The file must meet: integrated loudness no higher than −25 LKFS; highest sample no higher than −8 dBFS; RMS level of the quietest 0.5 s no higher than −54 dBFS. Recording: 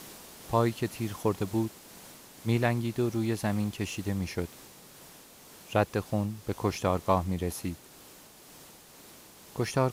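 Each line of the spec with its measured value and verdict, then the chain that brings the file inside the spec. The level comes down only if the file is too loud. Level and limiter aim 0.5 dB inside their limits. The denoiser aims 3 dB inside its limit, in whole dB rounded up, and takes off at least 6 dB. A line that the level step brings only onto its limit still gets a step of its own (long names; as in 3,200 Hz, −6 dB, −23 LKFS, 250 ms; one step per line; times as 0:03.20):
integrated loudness −31.0 LKFS: in spec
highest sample −10.0 dBFS: in spec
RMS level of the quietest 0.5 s −52 dBFS: out of spec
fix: broadband denoise 6 dB, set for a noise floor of −52 dBFS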